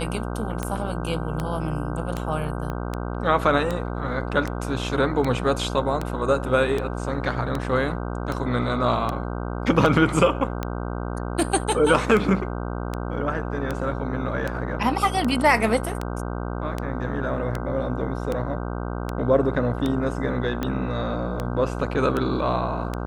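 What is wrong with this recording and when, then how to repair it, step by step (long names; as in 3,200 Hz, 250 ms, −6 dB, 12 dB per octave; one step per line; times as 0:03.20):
mains buzz 60 Hz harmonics 26 −29 dBFS
scratch tick 78 rpm −13 dBFS
0:02.70: click −18 dBFS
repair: click removal
hum removal 60 Hz, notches 26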